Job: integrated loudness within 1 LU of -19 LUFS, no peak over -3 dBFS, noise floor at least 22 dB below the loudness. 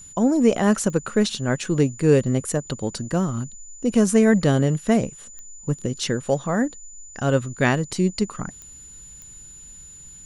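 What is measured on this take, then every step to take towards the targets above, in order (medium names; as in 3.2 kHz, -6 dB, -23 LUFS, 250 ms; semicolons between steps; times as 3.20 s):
clicks found 4; steady tone 7 kHz; tone level -41 dBFS; loudness -22.0 LUFS; peak level -5.0 dBFS; loudness target -19.0 LUFS
-> de-click; band-stop 7 kHz, Q 30; trim +3 dB; peak limiter -3 dBFS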